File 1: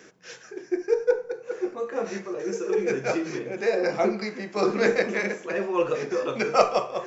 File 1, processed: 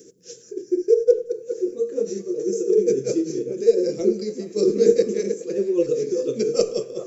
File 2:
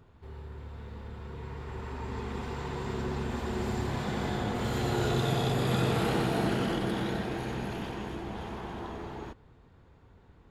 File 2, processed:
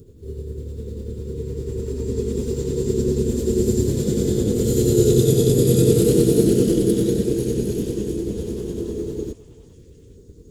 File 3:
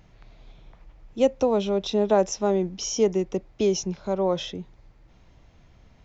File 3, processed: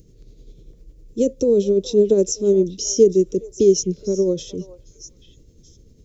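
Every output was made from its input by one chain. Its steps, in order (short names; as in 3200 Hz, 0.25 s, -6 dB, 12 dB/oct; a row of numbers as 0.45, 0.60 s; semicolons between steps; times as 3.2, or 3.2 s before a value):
EQ curve 200 Hz 0 dB, 460 Hz +6 dB, 760 Hz -28 dB, 2200 Hz -19 dB, 7500 Hz +8 dB; tremolo 10 Hz, depth 41%; delay with a stepping band-pass 0.419 s, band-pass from 930 Hz, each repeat 1.4 oct, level -9 dB; normalise peaks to -3 dBFS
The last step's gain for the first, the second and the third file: +4.0, +13.0, +6.0 dB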